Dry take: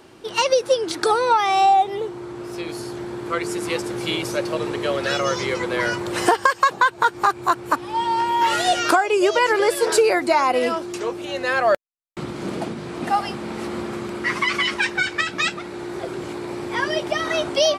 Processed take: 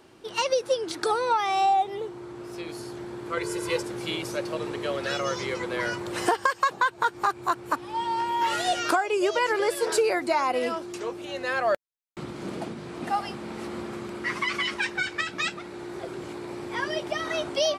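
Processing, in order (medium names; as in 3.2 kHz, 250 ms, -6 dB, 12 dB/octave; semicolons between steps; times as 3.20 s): 3.37–3.83 s: comb 2 ms, depth 100%; trim -6.5 dB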